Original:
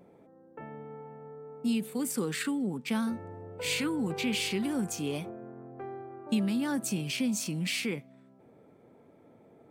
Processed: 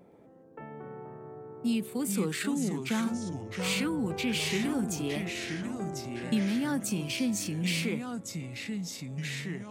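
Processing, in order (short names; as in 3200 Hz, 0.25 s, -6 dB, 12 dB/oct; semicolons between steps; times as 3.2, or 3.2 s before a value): echoes that change speed 0.12 s, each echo -3 st, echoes 2, each echo -6 dB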